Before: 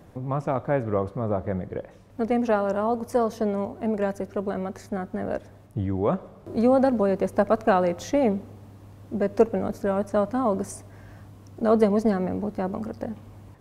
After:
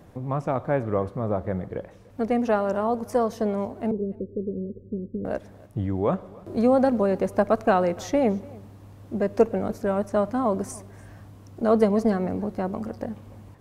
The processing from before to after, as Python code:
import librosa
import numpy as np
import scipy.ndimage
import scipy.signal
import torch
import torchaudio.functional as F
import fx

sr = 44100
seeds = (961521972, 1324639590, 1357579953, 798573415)

y = fx.steep_lowpass(x, sr, hz=520.0, slope=96, at=(3.91, 5.25))
y = y + 10.0 ** (-23.5 / 20.0) * np.pad(y, (int(291 * sr / 1000.0), 0))[:len(y)]